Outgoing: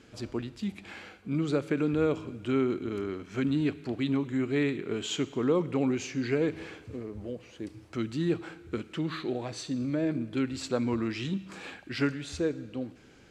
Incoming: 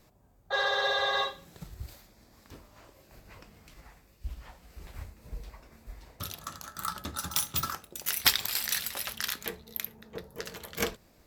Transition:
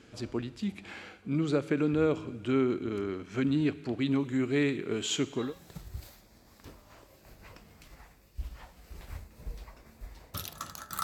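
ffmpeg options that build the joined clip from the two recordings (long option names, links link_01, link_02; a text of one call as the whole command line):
ffmpeg -i cue0.wav -i cue1.wav -filter_complex "[0:a]asettb=1/sr,asplit=3[link_01][link_02][link_03];[link_01]atrim=end=4.114[link_04];[link_02]atrim=start=4.11:end=5.54,asetpts=PTS-STARTPTS,afade=type=in:duration=0.004:curve=qsin,afade=type=out:start_time=1.426:duration=0.004:curve=qsin,highshelf=frequency=5600:gain=6.5[link_05];[link_03]atrim=start=5.536[link_06];[link_04][link_05]acrossfade=duration=0.004:curve1=hsin:curve2=qsin[link_07];[link_07][link_06]acrossfade=duration=0.004:curve1=qsin:curve2=hsin,apad=whole_dur=11.03,atrim=end=11.03,atrim=end=5.54,asetpts=PTS-STARTPTS[link_08];[1:a]atrim=start=1.22:end=6.89,asetpts=PTS-STARTPTS[link_09];[link_08][link_09]acrossfade=duration=0.18:curve1=tri:curve2=tri" out.wav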